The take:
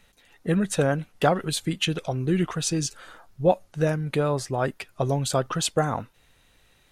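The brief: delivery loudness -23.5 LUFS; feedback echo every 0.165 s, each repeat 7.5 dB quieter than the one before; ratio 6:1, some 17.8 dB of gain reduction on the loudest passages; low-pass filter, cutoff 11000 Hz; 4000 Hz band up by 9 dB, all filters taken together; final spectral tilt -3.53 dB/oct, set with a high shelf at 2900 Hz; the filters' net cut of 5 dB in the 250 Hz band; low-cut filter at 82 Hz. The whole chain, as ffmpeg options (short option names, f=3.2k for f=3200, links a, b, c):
-af "highpass=82,lowpass=11k,equalizer=f=250:t=o:g=-8.5,highshelf=f=2.9k:g=3,equalizer=f=4k:t=o:g=9,acompressor=threshold=-34dB:ratio=6,aecho=1:1:165|330|495|660|825:0.422|0.177|0.0744|0.0312|0.0131,volume=13dB"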